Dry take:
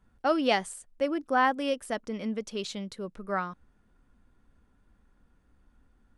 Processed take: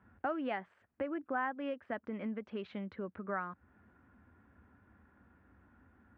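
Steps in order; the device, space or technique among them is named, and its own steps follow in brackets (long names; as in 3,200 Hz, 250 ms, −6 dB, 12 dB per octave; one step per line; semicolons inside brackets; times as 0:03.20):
bass amplifier (downward compressor 3 to 1, threshold −44 dBFS, peak gain reduction 18.5 dB; loudspeaker in its box 77–2,300 Hz, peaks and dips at 83 Hz +4 dB, 150 Hz −8 dB, 470 Hz −4 dB, 1,600 Hz +4 dB)
level +5.5 dB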